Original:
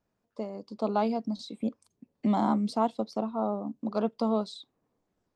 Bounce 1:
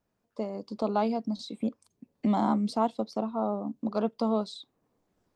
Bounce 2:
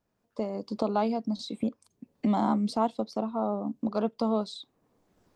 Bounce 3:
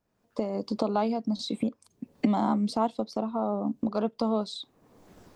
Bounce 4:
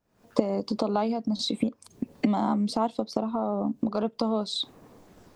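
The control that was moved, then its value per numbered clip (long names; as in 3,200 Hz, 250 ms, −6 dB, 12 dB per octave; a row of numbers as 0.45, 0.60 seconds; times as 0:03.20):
camcorder AGC, rising by: 5.4, 14, 35, 86 dB per second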